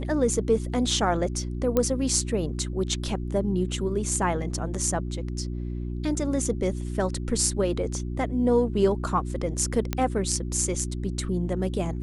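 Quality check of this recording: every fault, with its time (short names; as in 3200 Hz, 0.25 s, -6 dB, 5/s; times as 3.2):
hum 60 Hz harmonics 6 -31 dBFS
1.77 pop -10 dBFS
9.93 pop -11 dBFS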